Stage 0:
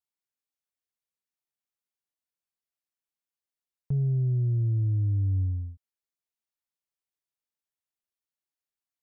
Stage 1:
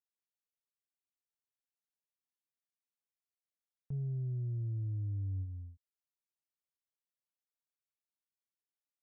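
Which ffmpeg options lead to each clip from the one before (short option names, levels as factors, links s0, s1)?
-af "agate=range=0.282:threshold=0.0562:ratio=16:detection=peak,acompressor=threshold=0.0126:ratio=2.5"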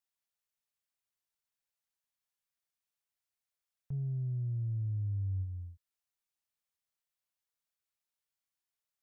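-af "equalizer=f=300:t=o:w=1.1:g=-12,volume=1.5"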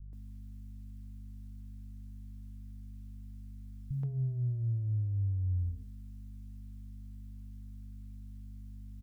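-filter_complex "[0:a]aeval=exprs='val(0)+0.00126*(sin(2*PI*50*n/s)+sin(2*PI*2*50*n/s)/2+sin(2*PI*3*50*n/s)/3+sin(2*PI*4*50*n/s)/4+sin(2*PI*5*50*n/s)/5)':c=same,alimiter=level_in=7.08:limit=0.0631:level=0:latency=1,volume=0.141,acrossover=split=160[s0][s1];[s1]adelay=130[s2];[s0][s2]amix=inputs=2:normalize=0,volume=5.01"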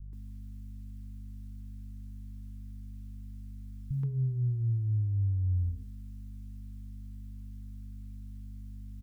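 -af "asuperstop=centerf=640:order=4:qfactor=1.7,volume=1.41"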